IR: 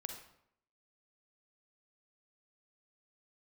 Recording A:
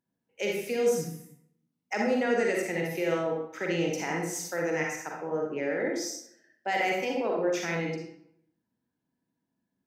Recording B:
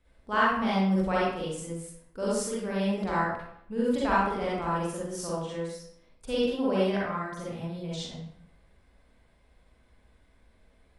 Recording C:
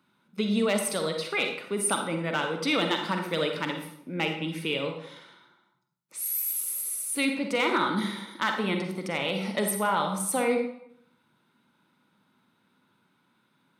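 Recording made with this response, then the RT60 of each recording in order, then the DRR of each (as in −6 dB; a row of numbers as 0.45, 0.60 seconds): C; 0.70, 0.70, 0.70 seconds; −1.5, −7.5, 4.0 decibels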